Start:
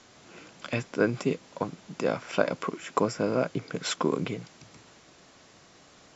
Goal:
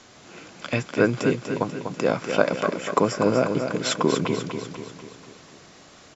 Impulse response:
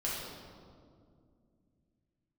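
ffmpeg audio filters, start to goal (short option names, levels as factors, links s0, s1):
-af "aecho=1:1:245|490|735|980|1225|1470:0.447|0.232|0.121|0.0628|0.0327|0.017,volume=1.78"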